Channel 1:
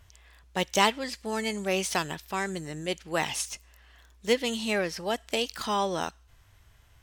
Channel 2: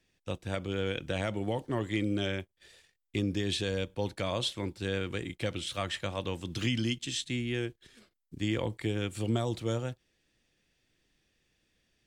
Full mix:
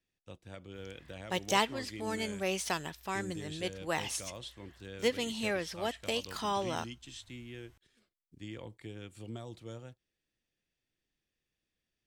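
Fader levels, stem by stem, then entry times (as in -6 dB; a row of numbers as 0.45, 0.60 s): -5.5, -13.5 dB; 0.75, 0.00 s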